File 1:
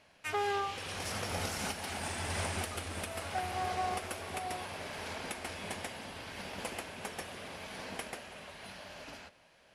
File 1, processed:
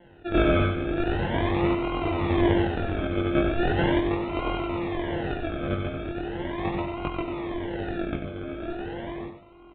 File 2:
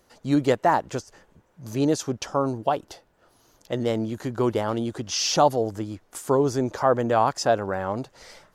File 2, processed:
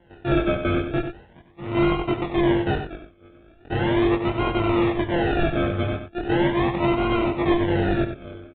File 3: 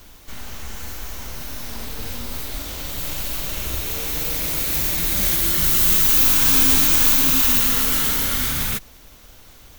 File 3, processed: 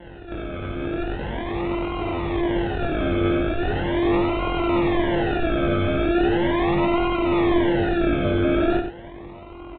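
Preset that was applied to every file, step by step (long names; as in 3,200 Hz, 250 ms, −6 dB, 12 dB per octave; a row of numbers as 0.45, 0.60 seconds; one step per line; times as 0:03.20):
samples sorted by size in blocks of 128 samples
high-pass filter 110 Hz 6 dB per octave
downward compressor, threshold −24 dBFS
sample-and-hold swept by an LFO 36×, swing 60% 0.39 Hz
gain into a clipping stage and back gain 24.5 dB
multi-voice chorus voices 4, 0.42 Hz, delay 21 ms, depth 1.6 ms
high-frequency loss of the air 110 metres
slap from a distant wall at 16 metres, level −8 dB
downsampling to 8,000 Hz
normalise the peak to −9 dBFS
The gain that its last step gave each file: +15.5, +11.5, +10.5 decibels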